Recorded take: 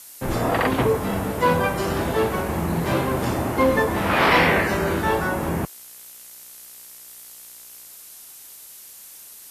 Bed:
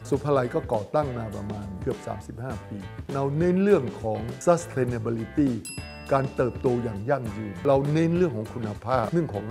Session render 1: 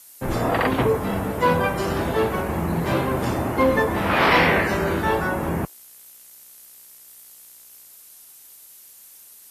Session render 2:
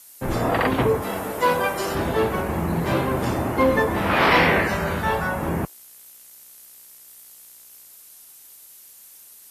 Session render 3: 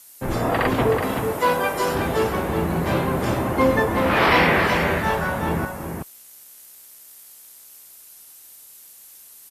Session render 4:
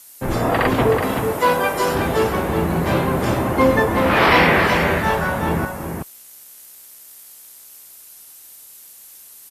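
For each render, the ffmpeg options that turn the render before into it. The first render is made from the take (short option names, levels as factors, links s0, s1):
-af "afftdn=nr=6:nf=-43"
-filter_complex "[0:a]asettb=1/sr,asplit=3[s0][s1][s2];[s0]atrim=end=1.024[s3];[s1]atrim=start=1.02:end=1.95,asetpts=PTS-STARTPTS,afade=t=in:d=0.004:c=qsin,afade=t=out:st=0.926:d=0.004:c=qsin,bass=f=250:g=-11,treble=f=4000:g=5[s4];[s2]atrim=start=1.946[s5];[s3][s4]acrossfade=d=0.004:c1=hsin:c2=qsin[s6];[s6][s5]acrossfade=d=0.004:c1=qsin:c2=hsin,asettb=1/sr,asplit=3[s7][s8][s9];[s7]atrim=end=4.684[s10];[s8]atrim=start=4.68:end=5.42,asetpts=PTS-STARTPTS,afade=t=in:d=0.004:c=qsin,afade=t=out:st=0.736:d=0.004:c=qsin,equalizer=f=340:t=o:w=0.45:g=-12[s11];[s9]atrim=start=5.416[s12];[s10][s11]acrossfade=d=0.004:c1=hsin:c2=qsin[s13];[s13][s12]acrossfade=d=0.004:c1=qsin:c2=hsin"
-af "aecho=1:1:375:0.501"
-af "volume=1.41"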